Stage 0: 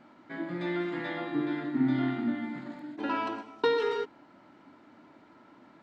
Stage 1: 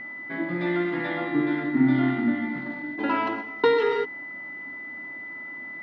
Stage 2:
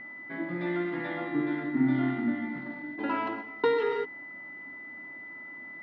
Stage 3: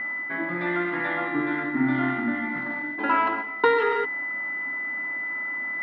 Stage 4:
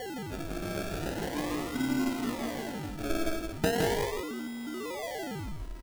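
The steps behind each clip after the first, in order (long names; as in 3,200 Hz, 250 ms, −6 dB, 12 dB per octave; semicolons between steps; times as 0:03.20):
steady tone 2,000 Hz −40 dBFS; high-frequency loss of the air 150 metres; level +6.5 dB
low-pass filter 3,700 Hz 6 dB per octave; level −5 dB
parametric band 1,400 Hz +11.5 dB 2.2 octaves; reversed playback; upward compression, threshold −25 dBFS; reversed playback
sample-and-hold swept by an LFO 35×, swing 60% 0.39 Hz; on a send: single-tap delay 164 ms −4 dB; on the sum: level −8 dB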